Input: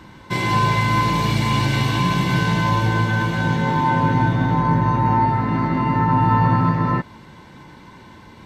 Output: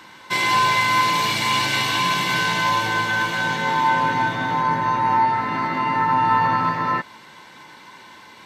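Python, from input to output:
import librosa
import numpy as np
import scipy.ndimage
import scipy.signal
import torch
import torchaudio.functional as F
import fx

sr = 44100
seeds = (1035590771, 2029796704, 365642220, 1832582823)

y = fx.highpass(x, sr, hz=1300.0, slope=6)
y = y * 10.0 ** (6.0 / 20.0)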